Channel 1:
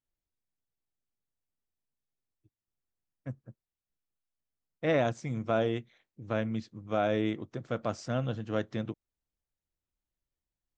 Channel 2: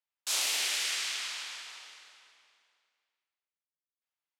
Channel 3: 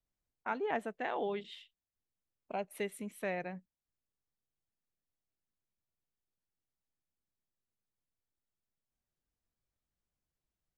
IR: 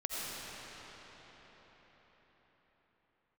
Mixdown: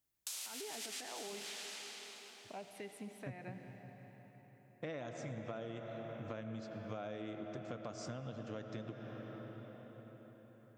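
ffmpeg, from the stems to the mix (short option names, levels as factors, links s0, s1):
-filter_complex "[0:a]volume=0.841,asplit=2[s0][s1];[s1]volume=0.251[s2];[1:a]volume=0.501,asplit=2[s3][s4];[s4]volume=0.251[s5];[2:a]bandreject=f=530:w=12,alimiter=level_in=2.82:limit=0.0631:level=0:latency=1,volume=0.355,lowpass=9500,volume=0.501,asplit=3[s6][s7][s8];[s7]volume=0.299[s9];[s8]apad=whole_len=193735[s10];[s3][s10]sidechaincompress=threshold=0.00158:ratio=8:attack=22:release=104[s11];[s0][s11]amix=inputs=2:normalize=0,highshelf=f=6600:g=12,acompressor=threshold=0.0158:ratio=2,volume=1[s12];[3:a]atrim=start_sample=2205[s13];[s2][s9]amix=inputs=2:normalize=0[s14];[s14][s13]afir=irnorm=-1:irlink=0[s15];[s5]aecho=0:1:875|1750|2625:1|0.17|0.0289[s16];[s6][s12][s15][s16]amix=inputs=4:normalize=0,highpass=58,acompressor=threshold=0.00794:ratio=5"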